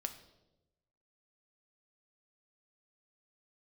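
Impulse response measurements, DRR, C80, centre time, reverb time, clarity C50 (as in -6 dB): 6.5 dB, 14.0 dB, 10 ms, 1.0 s, 12.0 dB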